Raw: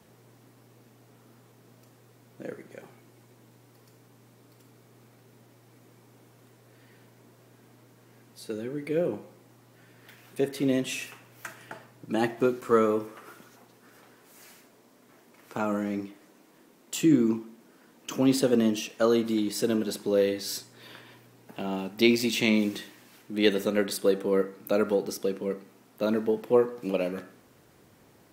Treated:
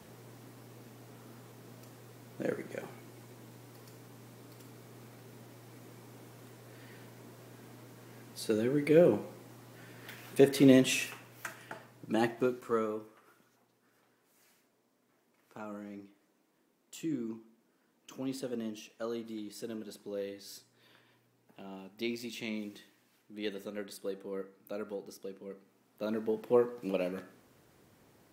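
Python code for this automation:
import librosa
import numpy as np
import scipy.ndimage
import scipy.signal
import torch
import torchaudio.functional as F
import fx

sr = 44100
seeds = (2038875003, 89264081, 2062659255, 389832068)

y = fx.gain(x, sr, db=fx.line((10.72, 4.0), (11.63, -3.0), (12.18, -3.0), (13.23, -15.0), (25.45, -15.0), (26.48, -5.0)))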